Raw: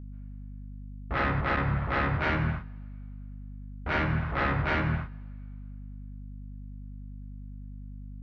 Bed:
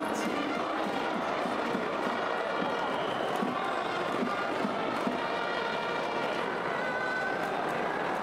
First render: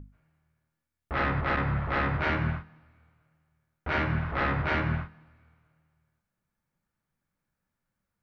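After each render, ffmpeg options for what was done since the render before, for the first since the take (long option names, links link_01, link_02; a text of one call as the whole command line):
ffmpeg -i in.wav -af "bandreject=frequency=50:width_type=h:width=6,bandreject=frequency=100:width_type=h:width=6,bandreject=frequency=150:width_type=h:width=6,bandreject=frequency=200:width_type=h:width=6,bandreject=frequency=250:width_type=h:width=6" out.wav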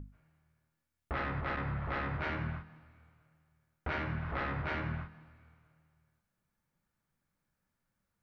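ffmpeg -i in.wav -af "acompressor=threshold=-33dB:ratio=6" out.wav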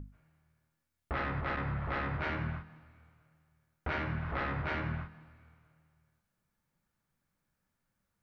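ffmpeg -i in.wav -af "volume=1dB" out.wav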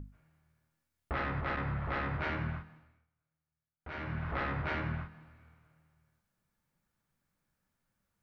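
ffmpeg -i in.wav -filter_complex "[0:a]asplit=3[link_01][link_02][link_03];[link_01]atrim=end=3.07,asetpts=PTS-STARTPTS,afade=type=out:start_time=2.62:duration=0.45:silence=0.1[link_04];[link_02]atrim=start=3.07:end=3.78,asetpts=PTS-STARTPTS,volume=-20dB[link_05];[link_03]atrim=start=3.78,asetpts=PTS-STARTPTS,afade=type=in:duration=0.45:silence=0.1[link_06];[link_04][link_05][link_06]concat=n=3:v=0:a=1" out.wav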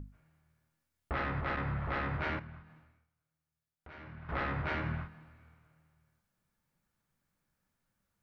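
ffmpeg -i in.wav -filter_complex "[0:a]asettb=1/sr,asplit=3[link_01][link_02][link_03];[link_01]atrim=end=2.394[link_04];[link_02]atrim=start=2.39:end=4.29,asetpts=PTS-STARTPTS,afade=type=in:duration=0.004:curve=qsin,afade=type=out:start_time=1.896:duration=0.004:curve=qsin,acompressor=threshold=-54dB:ratio=2:attack=3.2:release=140:knee=1:detection=peak[link_05];[link_03]atrim=start=4.286[link_06];[link_04][link_05]acrossfade=duration=0.004:curve1=hsin:curve2=qsin[link_07];[link_07][link_06]acrossfade=duration=0.004:curve1=qsin:curve2=hsin" out.wav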